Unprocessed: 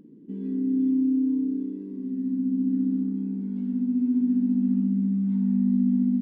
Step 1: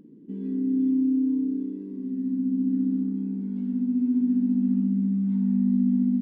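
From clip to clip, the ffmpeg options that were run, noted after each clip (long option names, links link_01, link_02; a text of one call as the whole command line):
ffmpeg -i in.wav -af anull out.wav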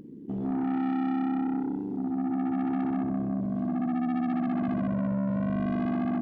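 ffmpeg -i in.wav -af "asoftclip=type=tanh:threshold=-32dB,tremolo=f=71:d=0.571,volume=8dB" out.wav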